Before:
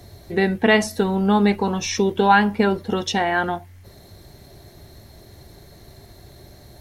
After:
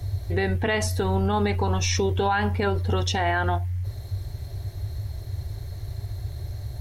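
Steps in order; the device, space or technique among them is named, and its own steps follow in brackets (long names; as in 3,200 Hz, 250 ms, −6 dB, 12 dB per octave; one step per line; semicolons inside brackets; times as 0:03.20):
car stereo with a boomy subwoofer (low shelf with overshoot 140 Hz +11 dB, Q 3; brickwall limiter −14.5 dBFS, peak gain reduction 10.5 dB)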